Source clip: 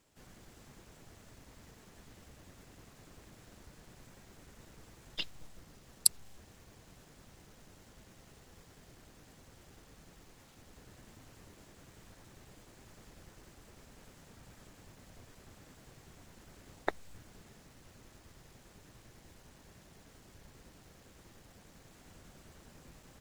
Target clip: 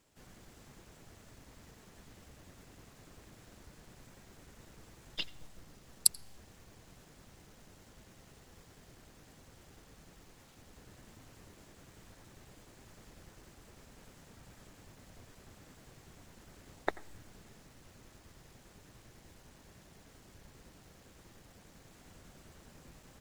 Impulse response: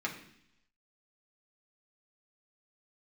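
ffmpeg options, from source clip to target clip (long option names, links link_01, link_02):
-filter_complex "[0:a]asplit=2[link_01][link_02];[1:a]atrim=start_sample=2205,adelay=85[link_03];[link_02][link_03]afir=irnorm=-1:irlink=0,volume=-23.5dB[link_04];[link_01][link_04]amix=inputs=2:normalize=0"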